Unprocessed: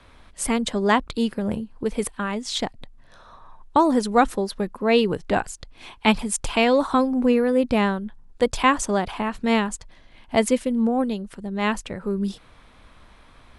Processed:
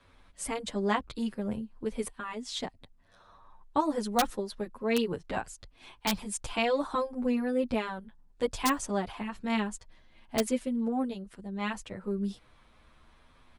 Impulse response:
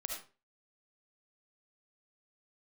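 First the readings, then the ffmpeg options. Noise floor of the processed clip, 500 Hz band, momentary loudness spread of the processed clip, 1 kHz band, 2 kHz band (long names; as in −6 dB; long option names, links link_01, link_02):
−61 dBFS, −10.0 dB, 10 LU, −10.0 dB, −10.0 dB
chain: -filter_complex "[0:a]aeval=exprs='(mod(2*val(0)+1,2)-1)/2':channel_layout=same,asplit=2[link_01][link_02];[link_02]adelay=8.6,afreqshift=0.36[link_03];[link_01][link_03]amix=inputs=2:normalize=1,volume=-6.5dB"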